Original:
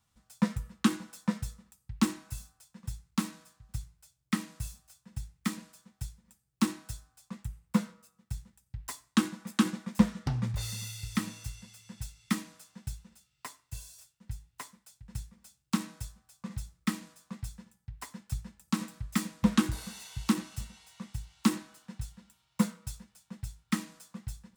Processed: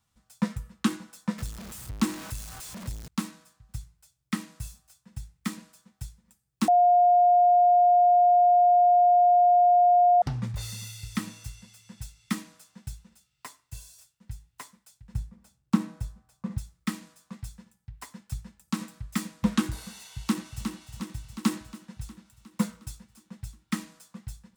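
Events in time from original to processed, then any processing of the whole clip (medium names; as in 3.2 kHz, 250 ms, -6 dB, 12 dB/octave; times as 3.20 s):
1.38–3.08 s: jump at every zero crossing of -36 dBFS
6.68–10.22 s: bleep 710 Hz -15.5 dBFS
15.14–16.58 s: tilt shelf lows +7 dB, about 1.5 kHz
20.09–20.65 s: echo throw 360 ms, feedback 65%, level -6.5 dB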